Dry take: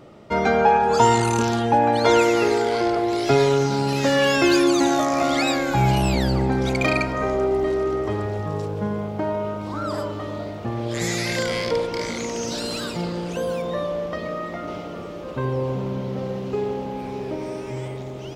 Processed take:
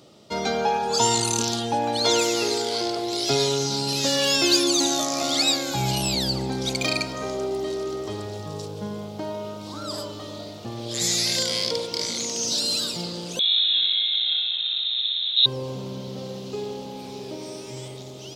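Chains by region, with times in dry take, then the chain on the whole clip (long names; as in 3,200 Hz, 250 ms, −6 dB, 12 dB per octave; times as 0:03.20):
0:13.39–0:15.46: running median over 41 samples + flutter between parallel walls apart 10.7 metres, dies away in 1.5 s + voice inversion scrambler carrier 3,900 Hz
whole clip: high-pass filter 95 Hz; high shelf with overshoot 2,800 Hz +12 dB, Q 1.5; level −6 dB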